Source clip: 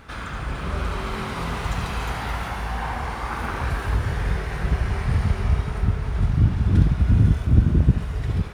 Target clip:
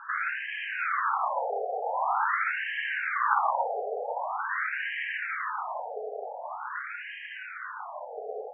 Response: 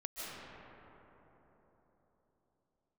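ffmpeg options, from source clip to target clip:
-filter_complex "[0:a]bass=f=250:g=0,treble=f=4000:g=-7,asplit=2[s0][s1];[1:a]atrim=start_sample=2205,afade=t=out:st=0.4:d=0.01,atrim=end_sample=18081[s2];[s1][s2]afir=irnorm=-1:irlink=0,volume=0.178[s3];[s0][s3]amix=inputs=2:normalize=0,afftfilt=real='re*between(b*sr/1024,570*pow(2300/570,0.5+0.5*sin(2*PI*0.45*pts/sr))/1.41,570*pow(2300/570,0.5+0.5*sin(2*PI*0.45*pts/sr))*1.41)':imag='im*between(b*sr/1024,570*pow(2300/570,0.5+0.5*sin(2*PI*0.45*pts/sr))/1.41,570*pow(2300/570,0.5+0.5*sin(2*PI*0.45*pts/sr))*1.41)':win_size=1024:overlap=0.75,volume=2.24"

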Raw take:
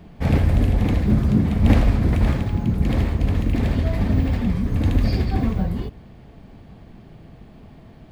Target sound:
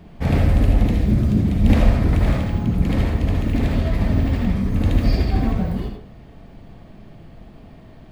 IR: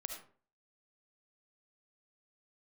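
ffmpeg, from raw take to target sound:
-filter_complex "[0:a]asettb=1/sr,asplit=3[s0][s1][s2];[s0]atrim=end=0.834[s3];[s1]atrim=start=0.83:end=1.73,asetpts=PTS-STARTPTS,afade=t=in:d=0.004:c=qsin,afade=t=out:st=0.896:d=0.004:c=qsin,equalizer=f=1100:w=0.64:g=-6.5[s4];[s2]atrim=start=1.726[s5];[s3][s4]acrossfade=d=0.004:c1=hsin:c2=qsin[s6];[s6][s5]acrossfade=d=0.004:c1=qsin:c2=hsin[s7];[1:a]atrim=start_sample=2205,asetrate=43218,aresample=44100[s8];[s7][s8]afir=irnorm=-1:irlink=0,volume=1.5"

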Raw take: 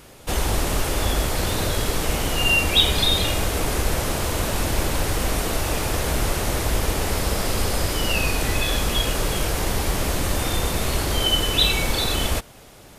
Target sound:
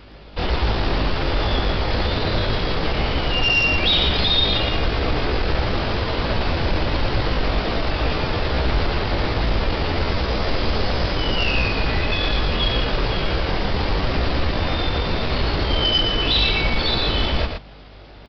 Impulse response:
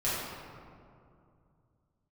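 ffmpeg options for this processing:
-af "aeval=exprs='0.708*(cos(1*acos(clip(val(0)/0.708,-1,1)))-cos(1*PI/2))+0.0112*(cos(5*acos(clip(val(0)/0.708,-1,1)))-cos(5*PI/2))+0.0398*(cos(7*acos(clip(val(0)/0.708,-1,1)))-cos(7*PI/2))':c=same,aeval=exprs='val(0)+0.00282*(sin(2*PI*50*n/s)+sin(2*PI*2*50*n/s)/2+sin(2*PI*3*50*n/s)/3+sin(2*PI*4*50*n/s)/4+sin(2*PI*5*50*n/s)/5)':c=same,aresample=11025,volume=10,asoftclip=hard,volume=0.1,aresample=44100,atempo=0.71,aecho=1:1:117:0.531,volume=1.78"

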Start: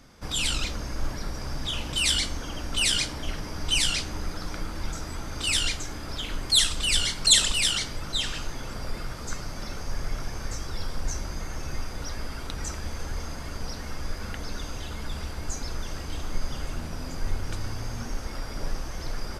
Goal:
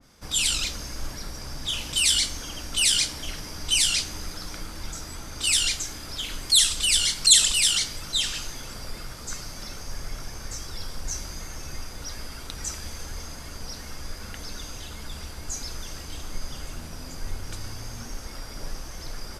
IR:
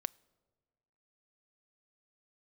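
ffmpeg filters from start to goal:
-filter_complex "[0:a]highshelf=f=4000:g=9,asplit=2[s0][s1];[s1]alimiter=limit=0.2:level=0:latency=1,volume=0.794[s2];[s0][s2]amix=inputs=2:normalize=0,adynamicequalizer=threshold=0.0224:dfrequency=1900:dqfactor=0.7:tfrequency=1900:tqfactor=0.7:attack=5:release=100:ratio=0.375:range=2.5:mode=boostabove:tftype=highshelf,volume=0.335"

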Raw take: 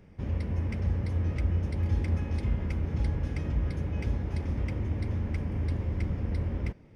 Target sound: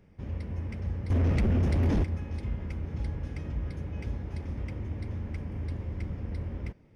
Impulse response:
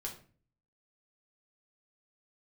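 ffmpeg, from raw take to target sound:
-filter_complex "[0:a]asettb=1/sr,asplit=3[s0][s1][s2];[s0]atrim=end=1.104[s3];[s1]atrim=start=1.1:end=2.04,asetpts=PTS-STARTPTS,afade=t=in:d=0.004:c=qsin,afade=t=out:st=0.936:d=0.004:c=qsin,aeval=exprs='0.15*sin(PI/2*3.16*val(0)/0.15)':c=same[s4];[s2]atrim=start=2.036[s5];[s3][s4]acrossfade=d=0.004:c1=hsin:c2=qsin[s6];[s6][s5]acrossfade=d=0.004:c1=qsin:c2=hsin,volume=0.596"

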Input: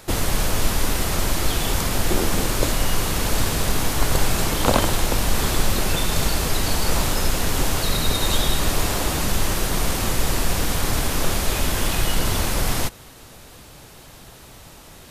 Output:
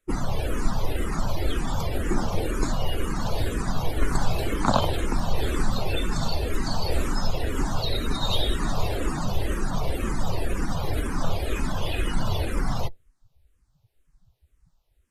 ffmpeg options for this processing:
-filter_complex "[0:a]afftdn=nr=32:nf=-28,asplit=2[s0][s1];[s1]afreqshift=-2[s2];[s0][s2]amix=inputs=2:normalize=1"

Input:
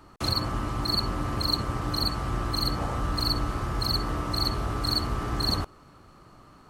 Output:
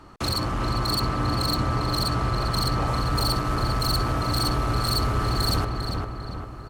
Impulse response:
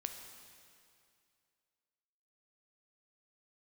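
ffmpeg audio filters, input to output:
-filter_complex "[0:a]asetnsamples=n=441:p=0,asendcmd='2.87 highshelf g 3',highshelf=f=11000:g=-9.5,volume=21.1,asoftclip=hard,volume=0.0473,asplit=2[s0][s1];[s1]adelay=399,lowpass=f=2600:p=1,volume=0.668,asplit=2[s2][s3];[s3]adelay=399,lowpass=f=2600:p=1,volume=0.55,asplit=2[s4][s5];[s5]adelay=399,lowpass=f=2600:p=1,volume=0.55,asplit=2[s6][s7];[s7]adelay=399,lowpass=f=2600:p=1,volume=0.55,asplit=2[s8][s9];[s9]adelay=399,lowpass=f=2600:p=1,volume=0.55,asplit=2[s10][s11];[s11]adelay=399,lowpass=f=2600:p=1,volume=0.55,asplit=2[s12][s13];[s13]adelay=399,lowpass=f=2600:p=1,volume=0.55,asplit=2[s14][s15];[s15]adelay=399,lowpass=f=2600:p=1,volume=0.55[s16];[s0][s2][s4][s6][s8][s10][s12][s14][s16]amix=inputs=9:normalize=0,volume=1.68"

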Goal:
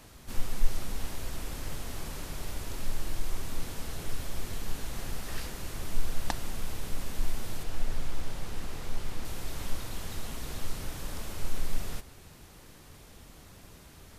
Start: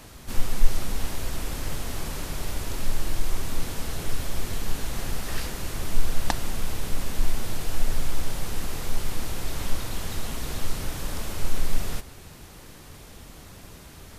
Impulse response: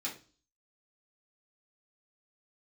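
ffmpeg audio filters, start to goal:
-filter_complex "[0:a]asettb=1/sr,asplit=3[s0][s1][s2];[s0]atrim=end=7.634[s3];[s1]atrim=start=7.63:end=9.25,asetpts=PTS-STARTPTS,afade=t=in:d=0.004:c=qsin,afade=t=out:st=1.616:d=0.004:c=qsin,highshelf=f=6900:g=-7.5[s4];[s2]atrim=start=9.246[s5];[s3][s4]acrossfade=d=0.004:c1=hsin:c2=qsin[s6];[s6][s5]acrossfade=d=0.004:c1=qsin:c2=hsin,volume=0.473"

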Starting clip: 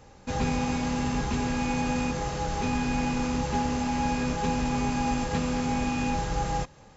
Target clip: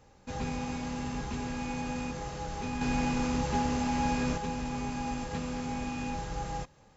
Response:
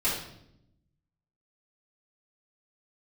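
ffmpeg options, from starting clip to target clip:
-filter_complex "[0:a]asettb=1/sr,asplit=3[s0][s1][s2];[s0]atrim=end=2.814[s3];[s1]atrim=start=2.81:end=4.38,asetpts=PTS-STARTPTS,afade=t=in:d=0.004:c=qsin,afade=t=out:st=1.566:d=0.004:c=qsin,acontrast=38[s4];[s2]atrim=start=4.376[s5];[s3][s4]acrossfade=d=0.004:c1=hsin:c2=qsin[s6];[s6][s5]acrossfade=d=0.004:c1=qsin:c2=hsin,volume=0.422"

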